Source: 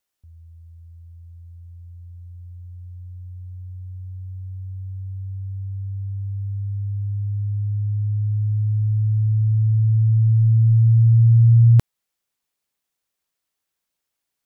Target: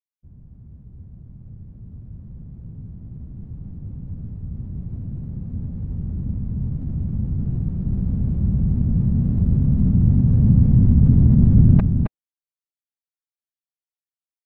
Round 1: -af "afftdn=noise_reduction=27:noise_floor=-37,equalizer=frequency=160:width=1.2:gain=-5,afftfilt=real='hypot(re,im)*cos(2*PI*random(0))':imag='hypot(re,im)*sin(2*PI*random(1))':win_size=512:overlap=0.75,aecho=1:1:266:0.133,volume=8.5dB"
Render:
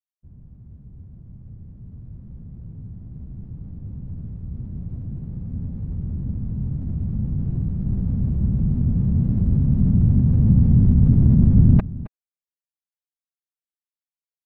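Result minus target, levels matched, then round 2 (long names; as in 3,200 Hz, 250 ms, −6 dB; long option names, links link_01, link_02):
echo-to-direct −11.5 dB
-af "afftdn=noise_reduction=27:noise_floor=-37,equalizer=frequency=160:width=1.2:gain=-5,afftfilt=real='hypot(re,im)*cos(2*PI*random(0))':imag='hypot(re,im)*sin(2*PI*random(1))':win_size=512:overlap=0.75,aecho=1:1:266:0.501,volume=8.5dB"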